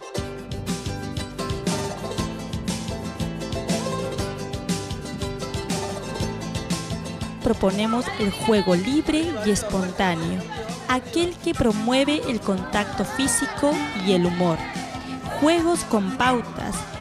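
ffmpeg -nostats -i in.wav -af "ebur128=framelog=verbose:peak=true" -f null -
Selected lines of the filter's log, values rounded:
Integrated loudness:
  I:         -24.3 LUFS
  Threshold: -34.3 LUFS
Loudness range:
  LRA:         6.1 LU
  Threshold: -44.2 LUFS
  LRA low:   -28.3 LUFS
  LRA high:  -22.3 LUFS
True peak:
  Peak:       -6.8 dBFS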